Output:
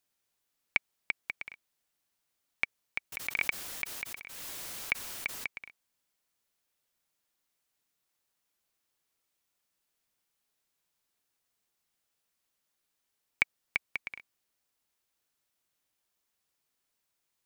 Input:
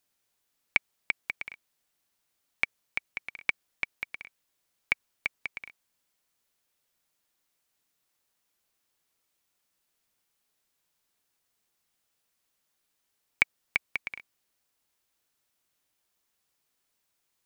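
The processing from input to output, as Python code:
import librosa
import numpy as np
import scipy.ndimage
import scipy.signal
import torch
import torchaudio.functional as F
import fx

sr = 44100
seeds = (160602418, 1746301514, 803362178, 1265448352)

y = fx.pre_swell(x, sr, db_per_s=32.0, at=(3.12, 5.47))
y = y * 10.0 ** (-3.5 / 20.0)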